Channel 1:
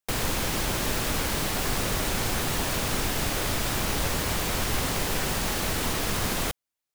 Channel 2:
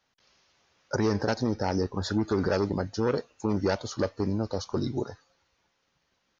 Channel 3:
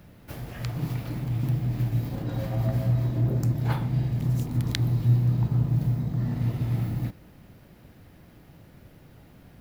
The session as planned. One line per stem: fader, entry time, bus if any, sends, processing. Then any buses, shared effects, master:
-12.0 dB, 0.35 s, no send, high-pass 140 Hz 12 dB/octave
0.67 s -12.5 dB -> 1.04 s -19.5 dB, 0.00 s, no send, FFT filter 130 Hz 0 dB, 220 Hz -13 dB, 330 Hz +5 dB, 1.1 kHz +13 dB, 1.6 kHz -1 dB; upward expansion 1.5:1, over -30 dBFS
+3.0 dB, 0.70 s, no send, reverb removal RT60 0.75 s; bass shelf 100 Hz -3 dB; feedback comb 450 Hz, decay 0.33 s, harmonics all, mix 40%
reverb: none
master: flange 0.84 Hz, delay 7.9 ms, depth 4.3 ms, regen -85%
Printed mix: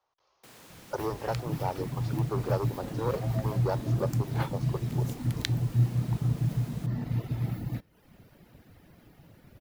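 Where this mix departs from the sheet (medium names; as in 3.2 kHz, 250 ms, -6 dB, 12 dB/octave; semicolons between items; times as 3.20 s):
stem 1 -12.0 dB -> -23.5 dB; stem 2 -12.5 dB -> -3.5 dB; master: missing flange 0.84 Hz, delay 7.9 ms, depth 4.3 ms, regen -85%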